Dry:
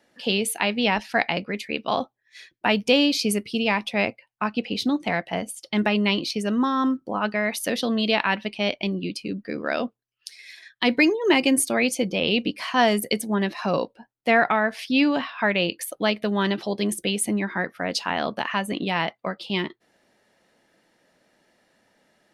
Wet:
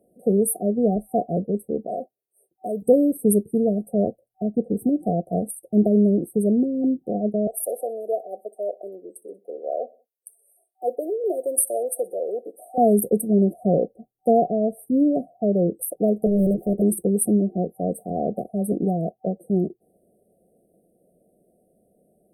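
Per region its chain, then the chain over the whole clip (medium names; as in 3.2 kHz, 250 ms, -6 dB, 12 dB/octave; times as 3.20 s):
1.87–2.82 s: high-pass 720 Hz 6 dB/octave + transformer saturation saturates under 2.1 kHz
7.47–12.78 s: high-pass 520 Hz 24 dB/octave + feedback delay 62 ms, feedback 51%, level -23 dB
16.26–16.82 s: dead-time distortion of 0.068 ms + treble shelf 2.9 kHz -10.5 dB + loudspeaker Doppler distortion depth 0.98 ms
whole clip: FFT band-reject 760–8200 Hz; rippled EQ curve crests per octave 0.8, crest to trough 6 dB; trim +4.5 dB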